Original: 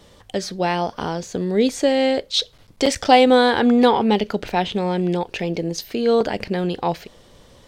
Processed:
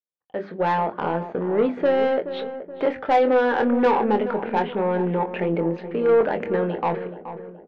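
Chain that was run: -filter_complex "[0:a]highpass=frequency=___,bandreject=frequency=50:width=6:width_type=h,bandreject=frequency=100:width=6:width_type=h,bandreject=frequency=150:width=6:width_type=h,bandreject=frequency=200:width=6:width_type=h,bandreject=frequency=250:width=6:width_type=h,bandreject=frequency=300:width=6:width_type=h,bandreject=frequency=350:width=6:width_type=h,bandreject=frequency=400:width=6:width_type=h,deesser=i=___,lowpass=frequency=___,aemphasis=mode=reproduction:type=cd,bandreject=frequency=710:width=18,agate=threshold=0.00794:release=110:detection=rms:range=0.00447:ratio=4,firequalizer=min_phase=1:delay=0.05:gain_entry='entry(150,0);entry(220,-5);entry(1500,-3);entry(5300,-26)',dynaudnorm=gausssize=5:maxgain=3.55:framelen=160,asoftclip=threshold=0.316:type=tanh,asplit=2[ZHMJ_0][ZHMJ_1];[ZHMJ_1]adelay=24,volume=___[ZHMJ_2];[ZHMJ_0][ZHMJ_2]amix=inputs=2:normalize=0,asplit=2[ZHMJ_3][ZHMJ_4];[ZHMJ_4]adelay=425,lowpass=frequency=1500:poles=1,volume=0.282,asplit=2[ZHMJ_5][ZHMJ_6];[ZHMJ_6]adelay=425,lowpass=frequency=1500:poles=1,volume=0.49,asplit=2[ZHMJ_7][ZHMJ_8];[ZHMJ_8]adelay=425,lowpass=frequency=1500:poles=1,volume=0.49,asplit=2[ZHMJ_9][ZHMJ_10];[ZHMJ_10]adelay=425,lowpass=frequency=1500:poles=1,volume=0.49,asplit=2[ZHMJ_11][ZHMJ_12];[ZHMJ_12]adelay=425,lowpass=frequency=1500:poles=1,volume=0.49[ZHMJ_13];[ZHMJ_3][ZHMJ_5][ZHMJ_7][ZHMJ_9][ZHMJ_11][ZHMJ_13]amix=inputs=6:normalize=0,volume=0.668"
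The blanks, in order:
270, 0.3, 2600, 0.376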